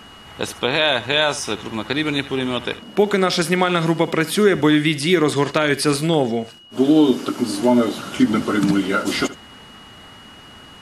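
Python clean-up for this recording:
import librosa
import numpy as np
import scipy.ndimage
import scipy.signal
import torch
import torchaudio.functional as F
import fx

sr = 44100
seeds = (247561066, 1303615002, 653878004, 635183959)

y = fx.fix_declip(x, sr, threshold_db=-3.5)
y = fx.notch(y, sr, hz=2900.0, q=30.0)
y = fx.fix_echo_inverse(y, sr, delay_ms=74, level_db=-16.5)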